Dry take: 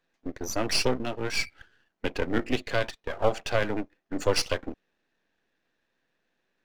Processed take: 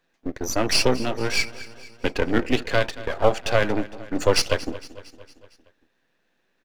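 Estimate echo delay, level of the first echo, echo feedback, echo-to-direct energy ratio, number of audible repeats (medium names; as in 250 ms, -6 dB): 229 ms, -17.5 dB, 57%, -16.0 dB, 4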